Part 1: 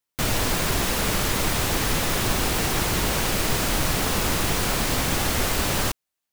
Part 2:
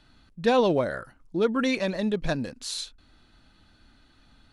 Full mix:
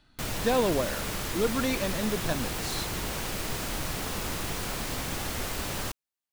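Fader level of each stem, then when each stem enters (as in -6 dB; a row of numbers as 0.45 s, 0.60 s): -9.5 dB, -4.0 dB; 0.00 s, 0.00 s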